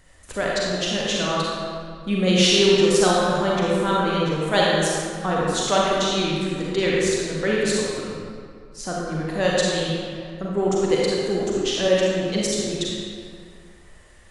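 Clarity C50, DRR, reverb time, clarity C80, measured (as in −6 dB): −3.5 dB, −5.0 dB, 2.2 s, −1.0 dB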